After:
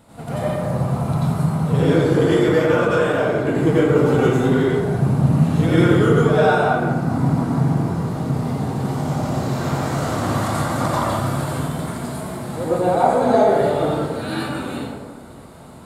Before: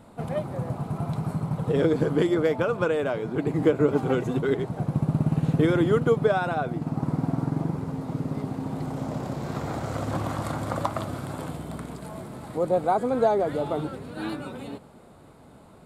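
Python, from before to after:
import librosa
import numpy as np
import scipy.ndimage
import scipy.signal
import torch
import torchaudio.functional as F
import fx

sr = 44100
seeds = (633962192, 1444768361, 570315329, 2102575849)

p1 = fx.high_shelf(x, sr, hz=2300.0, db=8.0)
p2 = 10.0 ** (-26.5 / 20.0) * np.tanh(p1 / 10.0 ** (-26.5 / 20.0))
p3 = p1 + (p2 * 10.0 ** (-7.0 / 20.0))
p4 = fx.rev_plate(p3, sr, seeds[0], rt60_s=1.4, hf_ratio=0.45, predelay_ms=75, drr_db=-10.0)
y = p4 * 10.0 ** (-5.5 / 20.0)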